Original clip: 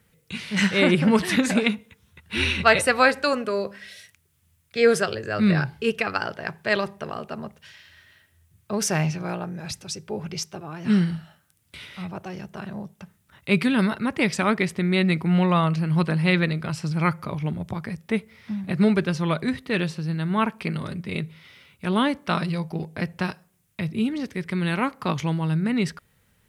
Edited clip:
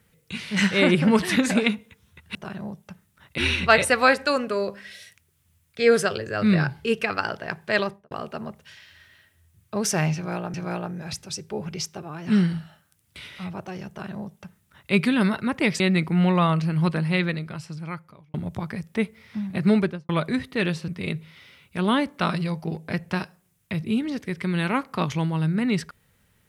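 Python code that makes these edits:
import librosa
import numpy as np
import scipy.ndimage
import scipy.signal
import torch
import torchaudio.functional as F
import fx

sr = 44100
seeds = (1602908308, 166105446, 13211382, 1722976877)

y = fx.studio_fade_out(x, sr, start_s=6.78, length_s=0.3)
y = fx.studio_fade_out(y, sr, start_s=18.91, length_s=0.32)
y = fx.edit(y, sr, fx.repeat(start_s=9.12, length_s=0.39, count=2),
    fx.duplicate(start_s=12.47, length_s=1.03, to_s=2.35),
    fx.cut(start_s=14.38, length_s=0.56),
    fx.fade_out_span(start_s=15.86, length_s=1.62),
    fx.cut(start_s=20.02, length_s=0.94), tone=tone)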